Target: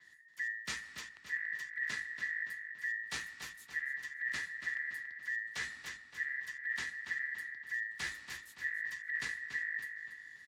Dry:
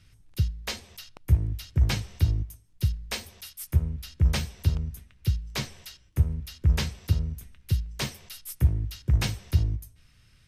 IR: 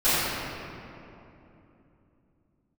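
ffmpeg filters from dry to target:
-filter_complex "[0:a]lowpass=10000,aeval=exprs='val(0)*sin(2*PI*1800*n/s)':channel_layout=same,equalizer=frequency=560:width=0.94:gain=-9.5,areverse,acompressor=threshold=-36dB:ratio=6,areverse,afreqshift=44,asplit=2[link_01][link_02];[link_02]adelay=284,lowpass=frequency=4900:poles=1,volume=-7dB,asplit=2[link_03][link_04];[link_04]adelay=284,lowpass=frequency=4900:poles=1,volume=0.49,asplit=2[link_05][link_06];[link_06]adelay=284,lowpass=frequency=4900:poles=1,volume=0.49,asplit=2[link_07][link_08];[link_08]adelay=284,lowpass=frequency=4900:poles=1,volume=0.49,asplit=2[link_09][link_10];[link_10]adelay=284,lowpass=frequency=4900:poles=1,volume=0.49,asplit=2[link_11][link_12];[link_12]adelay=284,lowpass=frequency=4900:poles=1,volume=0.49[link_13];[link_03][link_05][link_07][link_09][link_11][link_13]amix=inputs=6:normalize=0[link_14];[link_01][link_14]amix=inputs=2:normalize=0,adynamicequalizer=threshold=0.00158:dfrequency=5800:dqfactor=0.7:tfrequency=5800:tqfactor=0.7:attack=5:release=100:ratio=0.375:range=2.5:mode=cutabove:tftype=highshelf"

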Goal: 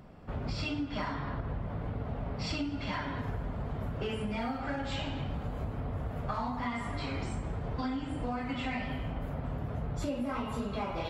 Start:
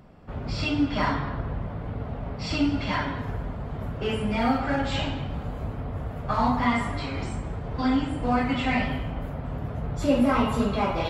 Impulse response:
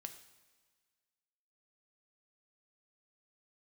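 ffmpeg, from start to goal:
-af "acompressor=threshold=-30dB:ratio=10,volume=-1dB"

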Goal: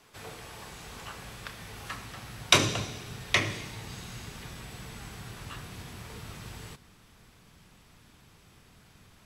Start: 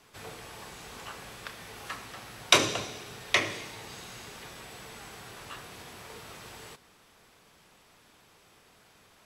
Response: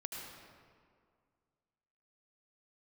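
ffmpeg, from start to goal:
-af "asubboost=boost=4:cutoff=230"

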